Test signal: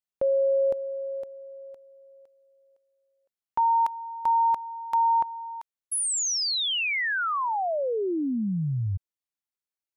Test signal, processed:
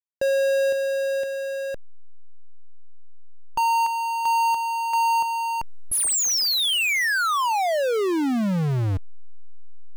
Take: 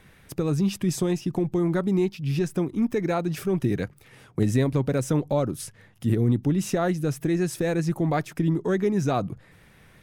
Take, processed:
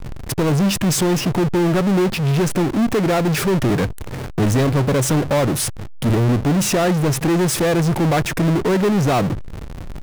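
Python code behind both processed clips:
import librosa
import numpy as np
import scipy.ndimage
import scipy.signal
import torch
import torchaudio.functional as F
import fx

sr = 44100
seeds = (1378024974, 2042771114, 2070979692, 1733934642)

y = fx.backlash(x, sr, play_db=-40.5)
y = fx.power_curve(y, sr, exponent=0.35)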